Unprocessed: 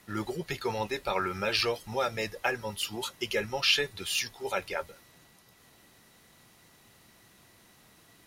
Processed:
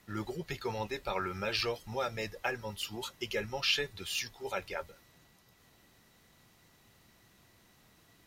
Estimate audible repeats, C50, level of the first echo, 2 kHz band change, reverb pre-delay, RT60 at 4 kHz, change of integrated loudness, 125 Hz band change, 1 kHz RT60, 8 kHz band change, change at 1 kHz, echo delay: none, none, none, -5.0 dB, none, none, -5.0 dB, -2.0 dB, none, -6.0 dB, -5.0 dB, none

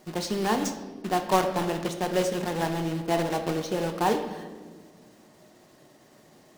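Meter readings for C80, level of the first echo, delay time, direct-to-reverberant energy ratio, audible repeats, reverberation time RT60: 10.5 dB, none, none, 5.0 dB, none, 1.4 s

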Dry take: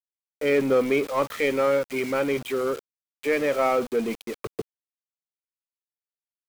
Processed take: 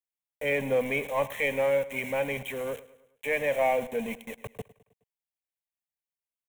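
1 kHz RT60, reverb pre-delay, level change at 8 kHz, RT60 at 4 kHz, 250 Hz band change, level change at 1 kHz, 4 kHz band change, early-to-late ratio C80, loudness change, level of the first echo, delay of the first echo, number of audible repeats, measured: none, none, -4.5 dB, none, -9.5 dB, -4.0 dB, -4.5 dB, none, -4.0 dB, -18.5 dB, 0.105 s, 3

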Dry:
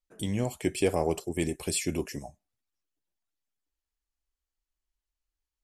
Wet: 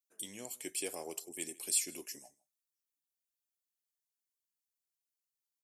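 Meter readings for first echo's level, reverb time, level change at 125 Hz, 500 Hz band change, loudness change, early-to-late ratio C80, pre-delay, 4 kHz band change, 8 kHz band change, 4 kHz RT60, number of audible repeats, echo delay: -24.0 dB, none, -29.0 dB, -16.5 dB, -7.0 dB, none, none, -5.0 dB, +1.0 dB, none, 1, 0.158 s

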